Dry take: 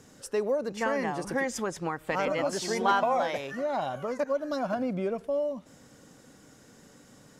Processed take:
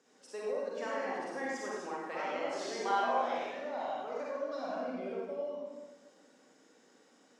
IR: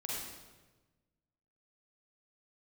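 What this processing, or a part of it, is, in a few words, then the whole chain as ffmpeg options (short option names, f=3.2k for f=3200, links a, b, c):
supermarket ceiling speaker: -filter_complex "[0:a]highpass=240,lowpass=6.3k[a];[1:a]atrim=start_sample=2205[b];[a][b]afir=irnorm=-1:irlink=0,highpass=250,volume=-8dB"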